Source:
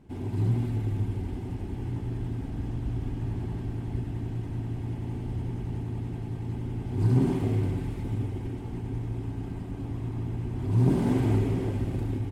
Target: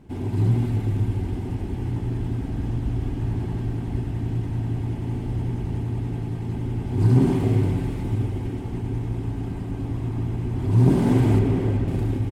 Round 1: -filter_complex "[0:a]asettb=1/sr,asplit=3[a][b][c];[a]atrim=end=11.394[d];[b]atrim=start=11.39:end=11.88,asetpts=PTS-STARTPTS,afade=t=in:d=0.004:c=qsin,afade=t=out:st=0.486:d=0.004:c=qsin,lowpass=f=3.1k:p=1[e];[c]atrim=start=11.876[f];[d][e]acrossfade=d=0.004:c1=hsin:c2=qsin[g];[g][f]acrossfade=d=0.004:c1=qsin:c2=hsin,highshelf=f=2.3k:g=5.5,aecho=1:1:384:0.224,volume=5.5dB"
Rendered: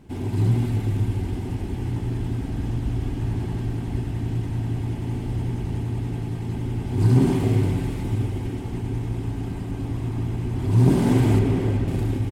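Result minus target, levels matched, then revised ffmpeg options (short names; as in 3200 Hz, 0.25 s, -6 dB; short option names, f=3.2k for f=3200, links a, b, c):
4000 Hz band +4.0 dB
-filter_complex "[0:a]asettb=1/sr,asplit=3[a][b][c];[a]atrim=end=11.394[d];[b]atrim=start=11.39:end=11.88,asetpts=PTS-STARTPTS,afade=t=in:d=0.004:c=qsin,afade=t=out:st=0.486:d=0.004:c=qsin,lowpass=f=3.1k:p=1[e];[c]atrim=start=11.876[f];[d][e]acrossfade=d=0.004:c1=hsin:c2=qsin[g];[g][f]acrossfade=d=0.004:c1=qsin:c2=hsin,aecho=1:1:384:0.224,volume=5.5dB"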